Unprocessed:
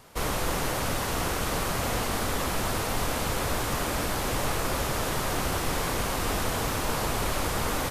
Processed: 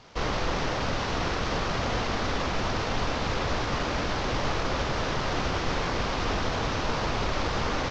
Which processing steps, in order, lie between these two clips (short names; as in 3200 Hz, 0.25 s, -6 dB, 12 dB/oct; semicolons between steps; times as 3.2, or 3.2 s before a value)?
CVSD 32 kbps; gain +1 dB